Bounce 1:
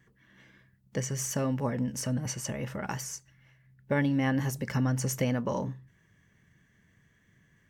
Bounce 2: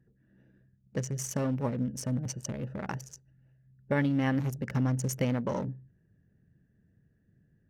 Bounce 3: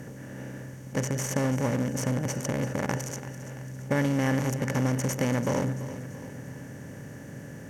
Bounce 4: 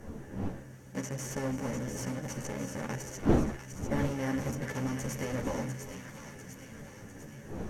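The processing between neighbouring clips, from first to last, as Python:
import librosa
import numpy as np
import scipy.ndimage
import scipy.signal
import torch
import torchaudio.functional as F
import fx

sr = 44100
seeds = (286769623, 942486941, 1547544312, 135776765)

y1 = fx.wiener(x, sr, points=41)
y2 = fx.bin_compress(y1, sr, power=0.4)
y2 = fx.echo_feedback(y2, sr, ms=338, feedback_pct=52, wet_db=-14)
y2 = y2 * 10.0 ** (-1.0 / 20.0)
y3 = fx.dmg_wind(y2, sr, seeds[0], corner_hz=320.0, level_db=-30.0)
y3 = fx.echo_wet_highpass(y3, sr, ms=699, feedback_pct=57, hz=1400.0, wet_db=-6.0)
y3 = fx.ensemble(y3, sr)
y3 = y3 * 10.0 ** (-4.5 / 20.0)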